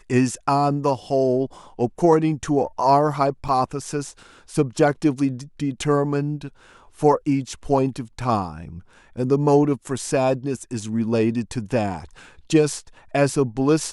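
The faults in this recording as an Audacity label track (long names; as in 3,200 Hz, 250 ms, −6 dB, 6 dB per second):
3.480000	3.490000	drop-out 5.4 ms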